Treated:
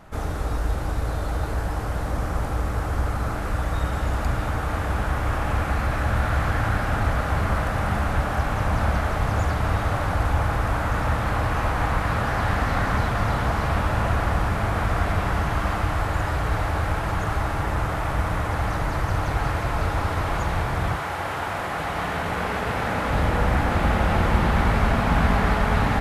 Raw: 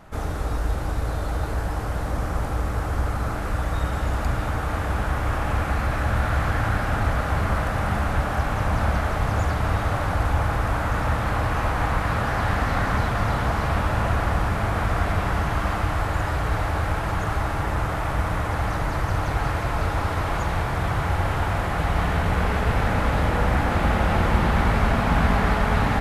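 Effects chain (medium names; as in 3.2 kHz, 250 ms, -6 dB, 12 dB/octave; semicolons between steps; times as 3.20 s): 20.95–23.09 s: high-pass 430 Hz -> 180 Hz 6 dB/octave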